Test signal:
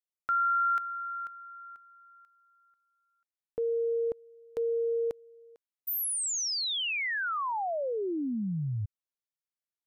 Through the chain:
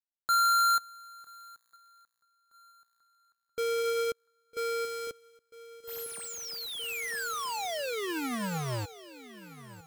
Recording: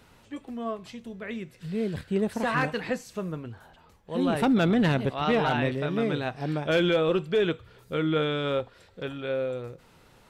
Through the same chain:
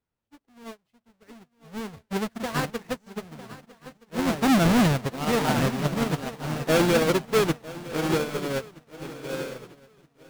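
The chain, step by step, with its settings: square wave that keeps the level; treble shelf 6.1 kHz -3.5 dB; shuffle delay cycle 1271 ms, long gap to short 3:1, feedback 52%, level -8 dB; upward expansion 2.5:1, over -40 dBFS

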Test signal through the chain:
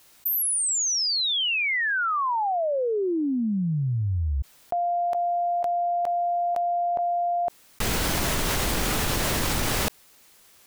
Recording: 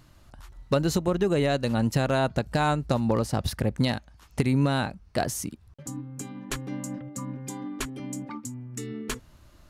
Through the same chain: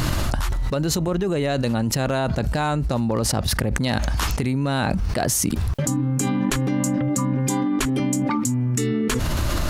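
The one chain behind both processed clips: level flattener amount 100%; trim -2.5 dB

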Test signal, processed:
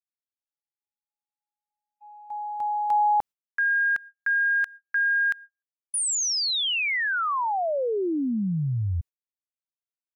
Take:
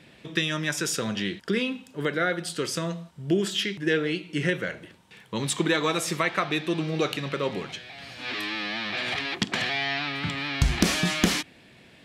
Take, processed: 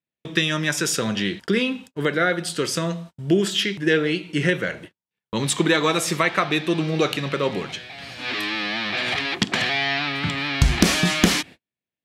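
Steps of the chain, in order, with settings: gate -43 dBFS, range -46 dB; trim +5 dB

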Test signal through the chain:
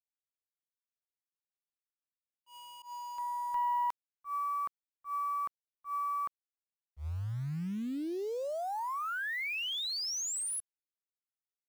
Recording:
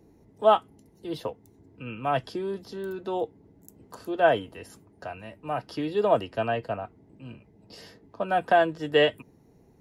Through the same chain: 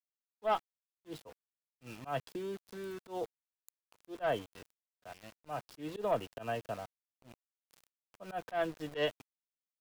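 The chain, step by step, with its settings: valve stage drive 13 dB, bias 0.25; small samples zeroed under -38.5 dBFS; slow attack 104 ms; trim -8 dB

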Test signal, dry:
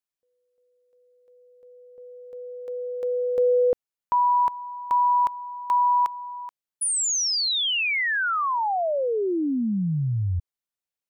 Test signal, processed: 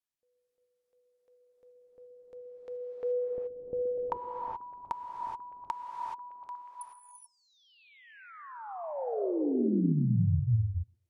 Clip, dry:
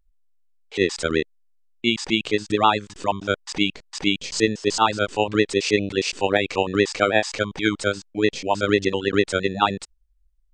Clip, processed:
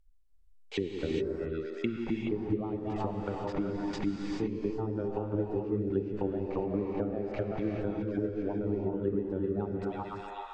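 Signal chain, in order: bass shelf 140 Hz +4 dB; repeats whose band climbs or falls 123 ms, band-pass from 280 Hz, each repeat 0.7 oct, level -10.5 dB; compression 12:1, threshold -22 dBFS; low-pass that closes with the level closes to 380 Hz, closed at -24 dBFS; gated-style reverb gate 450 ms rising, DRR 0.5 dB; trim -3.5 dB

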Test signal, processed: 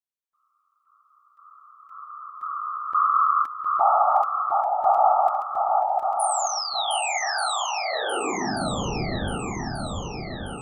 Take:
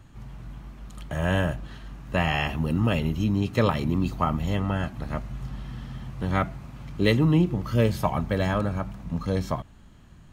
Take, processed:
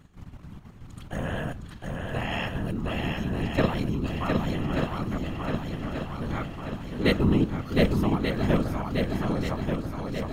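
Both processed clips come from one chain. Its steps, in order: level held to a coarse grid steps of 10 dB; whisper effect; shuffle delay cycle 1185 ms, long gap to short 1.5:1, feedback 54%, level -3.5 dB

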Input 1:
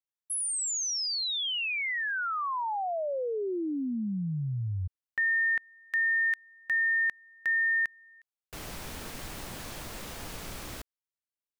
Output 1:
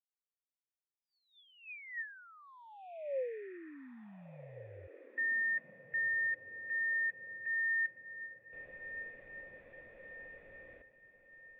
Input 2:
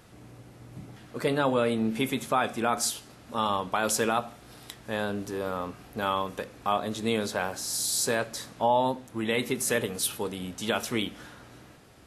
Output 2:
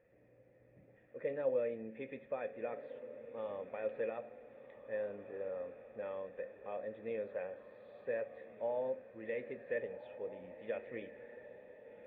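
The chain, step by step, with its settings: cascade formant filter e; echo that smears into a reverb 1514 ms, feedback 48%, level -12.5 dB; trim -2.5 dB; Vorbis 64 kbps 48 kHz

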